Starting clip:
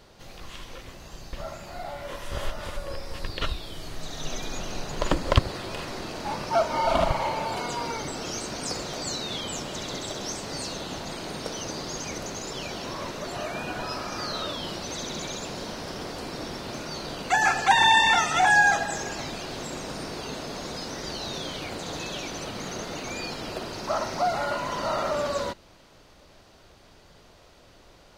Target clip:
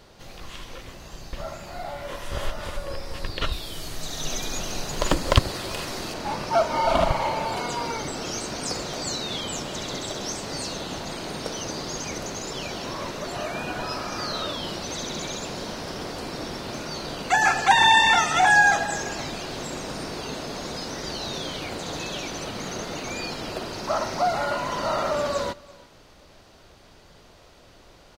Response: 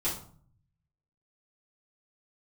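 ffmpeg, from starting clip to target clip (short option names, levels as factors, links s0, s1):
-filter_complex "[0:a]asettb=1/sr,asplit=3[s0][s1][s2];[s0]atrim=end=3.524[s3];[s1]atrim=start=3.52:end=6.14,asetpts=PTS-STARTPTS,afade=t=in:d=0.004:c=qsin,afade=t=out:st=2.616:d=0.004:c=qsin,aemphasis=mode=production:type=cd[s4];[s2]atrim=start=6.136[s5];[s3][s4]acrossfade=d=0.004:c1=hsin:c2=qsin[s6];[s6][s5]acrossfade=d=0.004:c1=qsin:c2=hsin,aecho=1:1:337:0.0708,volume=1.26"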